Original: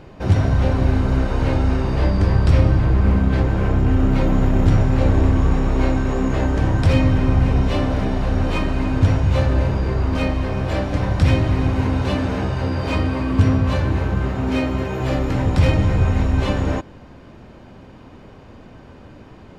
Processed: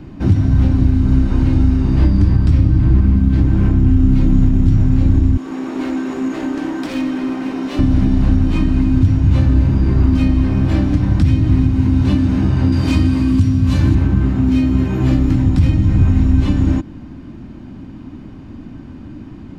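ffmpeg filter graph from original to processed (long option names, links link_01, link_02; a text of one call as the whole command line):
ffmpeg -i in.wav -filter_complex "[0:a]asettb=1/sr,asplit=3[link_01][link_02][link_03];[link_01]atrim=end=5.374[link_04];[link_02]atrim=start=5.37:end=7.79,asetpts=PTS-STARTPTS,afade=type=in:duration=0.004:curve=qsin,afade=type=out:start_time=2.416:duration=0.004:curve=qsin,highpass=frequency=320:width=0.5412,highpass=frequency=320:width=1.3066,asoftclip=type=hard:threshold=-23.5dB[link_05];[link_03]atrim=start=7.786[link_06];[link_04][link_05]acrossfade=duration=0.004:curve1=hsin:curve2=qsin[link_07];[link_07][link_06]acrossfade=duration=0.004:curve1=qsin:curve2=hsin,asettb=1/sr,asplit=3[link_08][link_09][link_10];[link_08]atrim=end=12.724[link_11];[link_09]atrim=start=12.72:end=13.95,asetpts=PTS-STARTPTS,afade=type=in:duration=0.004:curve=qsin,afade=type=out:start_time=1.226:duration=0.004:curve=qsin,highpass=47,highshelf=frequency=3600:gain=10.5[link_12];[link_10]atrim=start=13.946[link_13];[link_11][link_12]acrossfade=duration=0.004:curve1=hsin:curve2=qsin[link_14];[link_14][link_13]acrossfade=duration=0.004:curve1=qsin:curve2=hsin,lowshelf=frequency=370:width_type=q:width=3:gain=7.5,acrossover=split=180|3000[link_15][link_16][link_17];[link_16]acompressor=threshold=-16dB:ratio=6[link_18];[link_15][link_18][link_17]amix=inputs=3:normalize=0,alimiter=limit=-3.5dB:level=0:latency=1:release=486" out.wav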